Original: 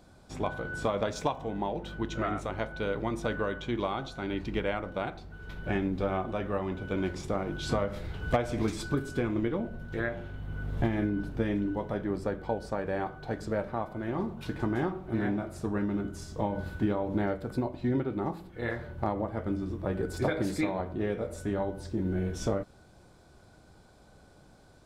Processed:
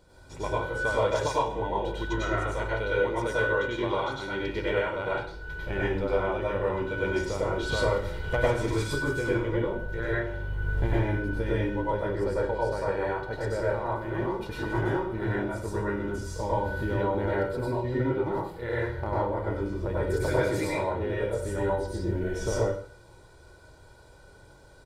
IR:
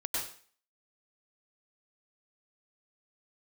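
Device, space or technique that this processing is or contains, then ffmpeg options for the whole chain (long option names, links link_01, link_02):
microphone above a desk: -filter_complex "[0:a]asettb=1/sr,asplit=3[link_01][link_02][link_03];[link_01]atrim=end=2.884[link_04];[link_02]atrim=start=2.88:end=4.95,asetpts=PTS-STARTPTS,afade=type=in:duration=0.004:curve=qsin,afade=type=out:start_time=2.066:duration=0.004:curve=qsin,highpass=frequency=99:poles=1[link_05];[link_03]atrim=start=4.946[link_06];[link_04][link_05]acrossfade=duration=0.004:curve1=hsin:curve2=qsin[link_07];[link_07][link_06]acrossfade=duration=0.004:curve1=qsin:curve2=hsin,aecho=1:1:2.1:0.58[link_08];[1:a]atrim=start_sample=2205[link_09];[link_08][link_09]afir=irnorm=-1:irlink=0,volume=-1.5dB"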